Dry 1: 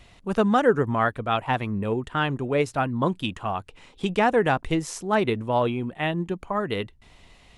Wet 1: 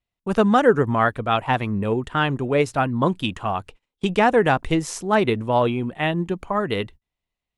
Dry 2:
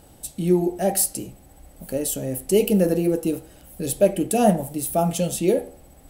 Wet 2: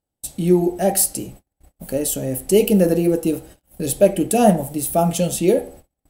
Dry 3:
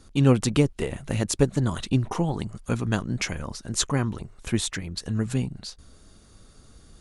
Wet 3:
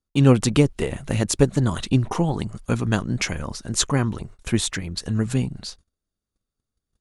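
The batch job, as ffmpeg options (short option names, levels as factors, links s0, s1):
-af "agate=range=0.0141:threshold=0.00708:ratio=16:detection=peak,volume=1.5"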